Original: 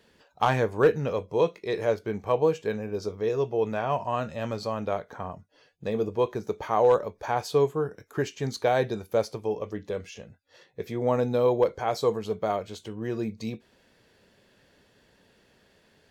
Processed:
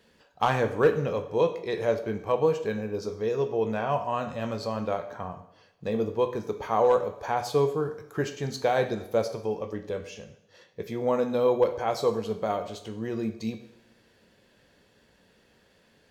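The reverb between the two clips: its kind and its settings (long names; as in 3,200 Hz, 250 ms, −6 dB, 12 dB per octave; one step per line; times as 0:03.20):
coupled-rooms reverb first 0.74 s, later 2.9 s, from −27 dB, DRR 7.5 dB
level −1 dB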